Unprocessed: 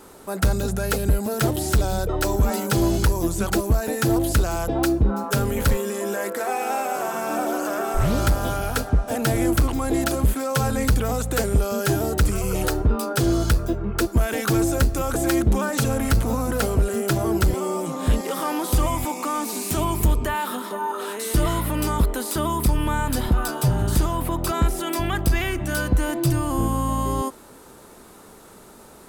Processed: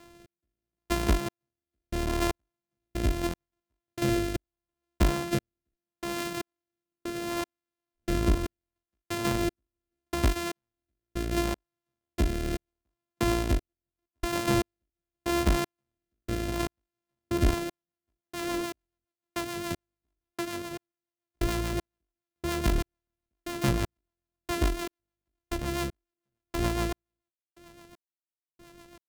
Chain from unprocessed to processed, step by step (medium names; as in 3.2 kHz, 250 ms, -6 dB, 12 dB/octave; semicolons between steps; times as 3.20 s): sorted samples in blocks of 128 samples; trance gate "xx.....x" 117 bpm -60 dB; rotary cabinet horn 0.75 Hz, later 7 Hz, at 17.09 s; trim -4 dB